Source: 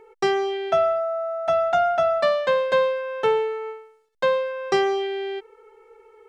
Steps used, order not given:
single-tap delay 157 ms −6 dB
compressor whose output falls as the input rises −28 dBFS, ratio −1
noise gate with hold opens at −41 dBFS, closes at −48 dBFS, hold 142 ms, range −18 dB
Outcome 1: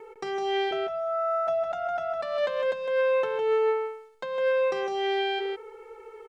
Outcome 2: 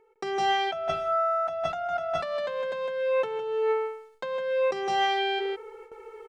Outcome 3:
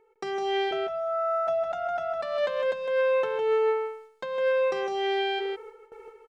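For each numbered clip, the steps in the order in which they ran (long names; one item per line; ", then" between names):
compressor whose output falls as the input rises, then single-tap delay, then noise gate with hold
single-tap delay, then noise gate with hold, then compressor whose output falls as the input rises
noise gate with hold, then compressor whose output falls as the input rises, then single-tap delay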